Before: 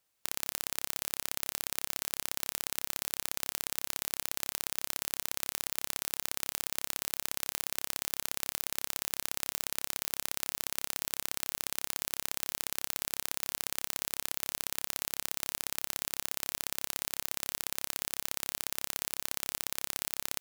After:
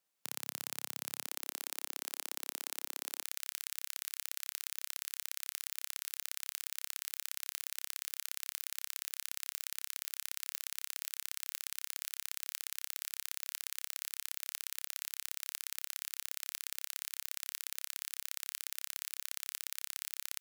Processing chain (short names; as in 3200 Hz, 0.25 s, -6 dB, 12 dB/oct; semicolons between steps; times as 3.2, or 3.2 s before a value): HPF 130 Hz 24 dB/oct, from 1.26 s 290 Hz, from 3.23 s 1400 Hz; gain -5.5 dB